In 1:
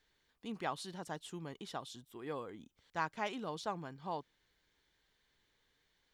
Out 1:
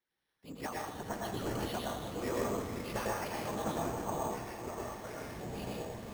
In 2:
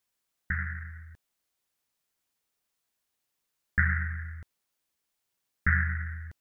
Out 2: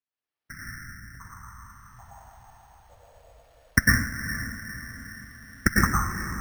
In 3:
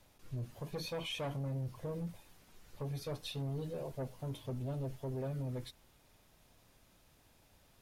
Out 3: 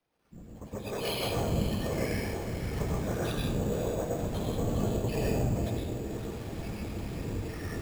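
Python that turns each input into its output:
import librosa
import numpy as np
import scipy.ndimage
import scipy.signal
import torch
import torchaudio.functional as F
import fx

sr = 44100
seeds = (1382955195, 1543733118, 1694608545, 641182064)

p1 = fx.recorder_agc(x, sr, target_db=-16.0, rise_db_per_s=18.0, max_gain_db=30)
p2 = scipy.signal.sosfilt(scipy.signal.butter(2, 60.0, 'highpass', fs=sr, output='sos'), p1)
p3 = fx.low_shelf(p2, sr, hz=80.0, db=-6.0)
p4 = fx.whisperise(p3, sr, seeds[0])
p5 = fx.echo_pitch(p4, sr, ms=493, semitones=-6, count=3, db_per_echo=-6.0)
p6 = p5 + fx.echo_diffused(p5, sr, ms=470, feedback_pct=53, wet_db=-10.5, dry=0)
p7 = fx.rev_plate(p6, sr, seeds[1], rt60_s=0.74, hf_ratio=0.85, predelay_ms=90, drr_db=-2.5)
p8 = np.repeat(scipy.signal.resample_poly(p7, 1, 6), 6)[:len(p7)]
y = F.gain(torch.from_numpy(p8), -13.0).numpy()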